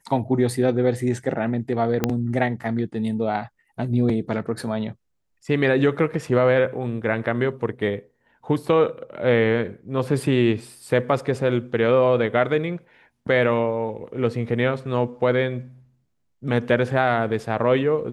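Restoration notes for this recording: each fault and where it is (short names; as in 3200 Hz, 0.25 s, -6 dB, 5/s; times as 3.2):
2.04 pop -6 dBFS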